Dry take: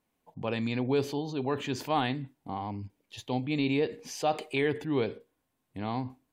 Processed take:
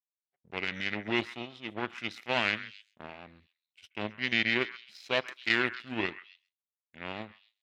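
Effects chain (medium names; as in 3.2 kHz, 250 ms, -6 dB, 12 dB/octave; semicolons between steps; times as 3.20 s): power-law waveshaper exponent 2; frequency weighting D; tape speed -17%; on a send: repeats whose band climbs or falls 132 ms, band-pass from 1.6 kHz, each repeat 1.4 oct, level -11.5 dB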